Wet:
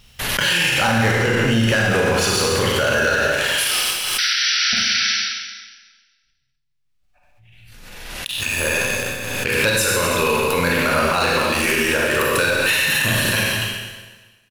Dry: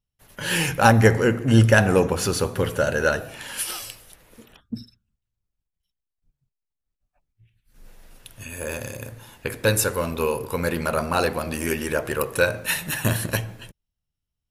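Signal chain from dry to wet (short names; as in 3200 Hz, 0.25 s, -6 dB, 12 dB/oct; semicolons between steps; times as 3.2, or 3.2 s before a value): bell 2900 Hz +11 dB 2.4 oct; sample leveller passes 3; in parallel at +2 dB: compressor, threshold -17 dBFS, peak gain reduction 16 dB; 3.89–4.75 on the sum: fixed phaser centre 1200 Hz, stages 6; 4.18–5.1 painted sound noise 1300–6000 Hz -8 dBFS; on a send: echo 0.26 s -18 dB; on the sum: Schroeder reverb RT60 1.3 s, combs from 31 ms, DRR -2 dB; maximiser -2.5 dB; backwards sustainer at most 27 dB/s; gain -8.5 dB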